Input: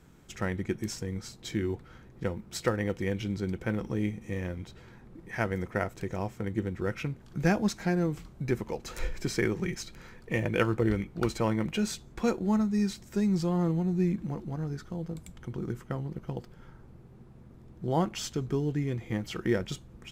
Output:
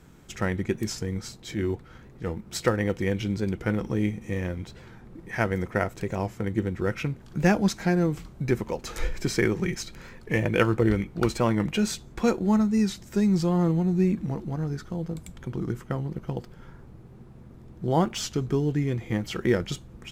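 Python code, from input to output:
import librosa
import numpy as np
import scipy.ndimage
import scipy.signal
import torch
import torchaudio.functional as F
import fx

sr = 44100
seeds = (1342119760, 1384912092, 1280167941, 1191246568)

y = fx.transient(x, sr, attack_db=-7, sustain_db=-2, at=(1.37, 2.46))
y = fx.record_warp(y, sr, rpm=45.0, depth_cents=100.0)
y = F.gain(torch.from_numpy(y), 4.5).numpy()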